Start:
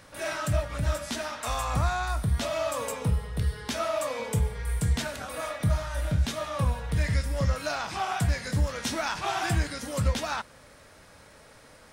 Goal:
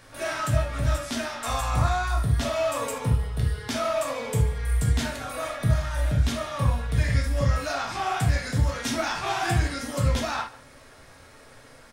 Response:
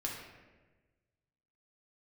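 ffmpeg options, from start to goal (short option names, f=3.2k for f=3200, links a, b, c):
-filter_complex "[0:a]asplit=2[a][b];[b]adelay=145.8,volume=-20dB,highshelf=f=4k:g=-3.28[c];[a][c]amix=inputs=2:normalize=0[d];[1:a]atrim=start_sample=2205,atrim=end_sample=3528[e];[d][e]afir=irnorm=-1:irlink=0,volume=2dB"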